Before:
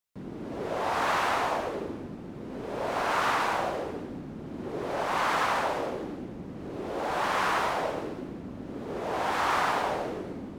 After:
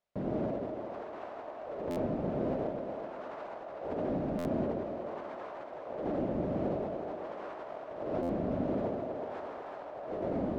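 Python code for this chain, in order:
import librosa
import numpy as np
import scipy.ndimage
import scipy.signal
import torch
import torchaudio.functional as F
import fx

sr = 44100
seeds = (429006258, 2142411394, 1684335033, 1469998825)

y = fx.peak_eq(x, sr, hz=620.0, db=14.0, octaves=0.51)
y = fx.over_compress(y, sr, threshold_db=-35.0, ratio=-1.0)
y = fx.spacing_loss(y, sr, db_at_10k=20)
y = fx.echo_split(y, sr, split_hz=310.0, low_ms=147, high_ms=370, feedback_pct=52, wet_db=-6)
y = fx.buffer_glitch(y, sr, at_s=(1.9, 4.38, 8.22), block=512, repeats=5)
y = y * librosa.db_to_amplitude(-3.5)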